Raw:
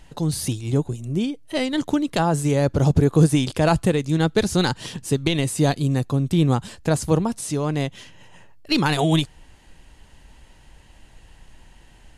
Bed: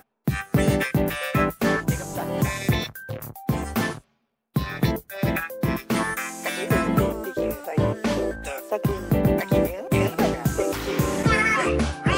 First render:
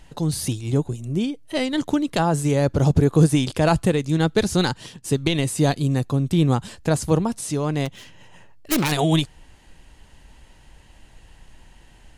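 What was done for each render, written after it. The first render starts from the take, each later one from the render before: 4.62–5.04 s: fade out, to -14 dB; 7.85–8.92 s: self-modulated delay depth 0.51 ms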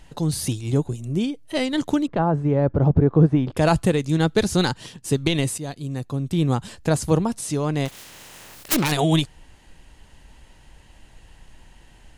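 2.07–3.57 s: low-pass 1.3 kHz; 5.58–6.80 s: fade in, from -15 dB; 7.87–8.73 s: spectral contrast reduction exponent 0.29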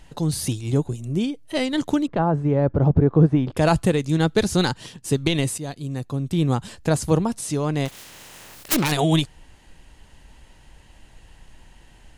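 no audible change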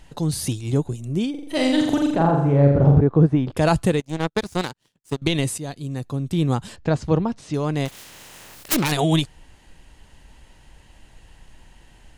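1.30–3.01 s: flutter echo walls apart 7.3 m, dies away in 0.79 s; 4.00–5.22 s: power-law waveshaper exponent 2; 6.76–7.54 s: distance through air 160 m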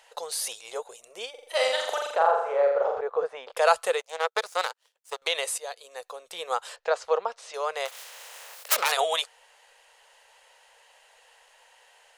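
elliptic high-pass 480 Hz, stop band 40 dB; dynamic bell 1.3 kHz, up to +6 dB, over -48 dBFS, Q 4.9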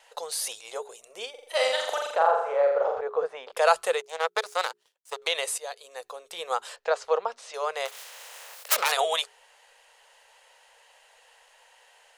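hum notches 60/120/180/240/300/360/420 Hz; gate with hold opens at -52 dBFS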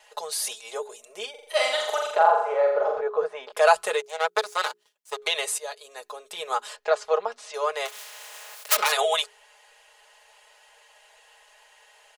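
comb 4.8 ms, depth 81%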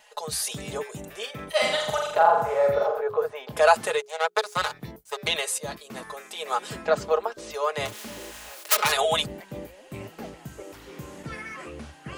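add bed -17.5 dB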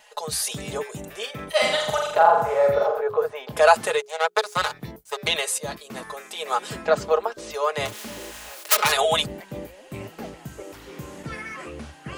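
trim +2.5 dB

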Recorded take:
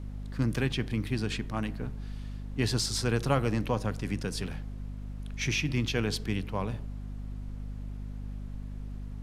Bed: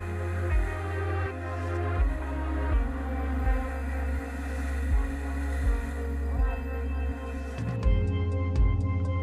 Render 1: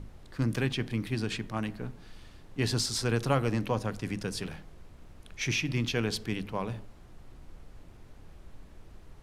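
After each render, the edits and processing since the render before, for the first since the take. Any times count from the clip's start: hum notches 50/100/150/200/250 Hz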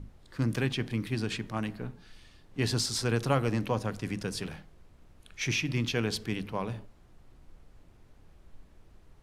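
noise print and reduce 6 dB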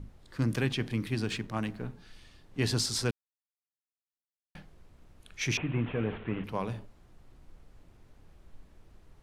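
1.24–1.84 s: hysteresis with a dead band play -54.5 dBFS; 3.11–4.55 s: mute; 5.57–6.44 s: one-bit delta coder 16 kbps, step -40.5 dBFS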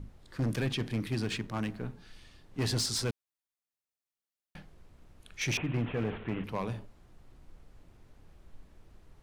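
overload inside the chain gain 25.5 dB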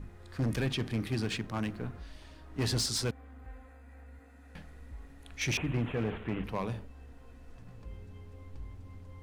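add bed -21.5 dB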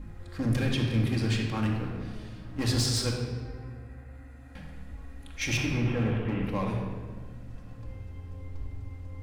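simulated room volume 2000 m³, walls mixed, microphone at 2.2 m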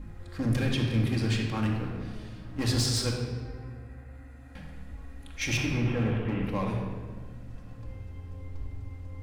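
no audible change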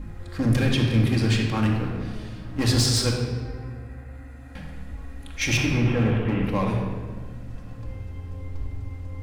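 trim +6 dB

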